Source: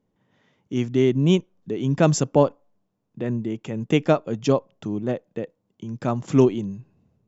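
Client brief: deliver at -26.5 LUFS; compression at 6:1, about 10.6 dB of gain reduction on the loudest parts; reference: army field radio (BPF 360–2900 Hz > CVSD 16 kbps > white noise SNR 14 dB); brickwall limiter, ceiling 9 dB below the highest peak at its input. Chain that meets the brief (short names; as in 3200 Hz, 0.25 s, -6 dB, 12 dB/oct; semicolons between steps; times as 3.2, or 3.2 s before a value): compressor 6:1, threshold -23 dBFS; limiter -21 dBFS; BPF 360–2900 Hz; CVSD 16 kbps; white noise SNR 14 dB; gain +12 dB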